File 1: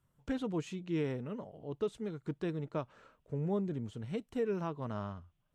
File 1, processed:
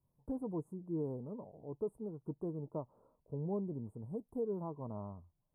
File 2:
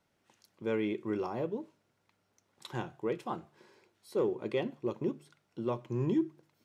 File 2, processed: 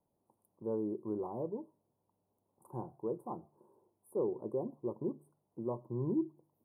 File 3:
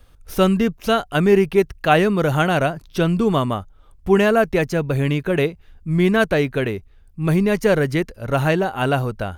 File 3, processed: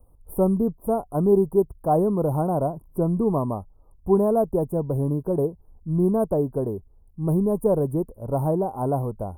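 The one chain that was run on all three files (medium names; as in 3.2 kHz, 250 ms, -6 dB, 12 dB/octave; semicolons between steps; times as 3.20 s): Chebyshev band-stop 1–9.5 kHz, order 4; trim -3.5 dB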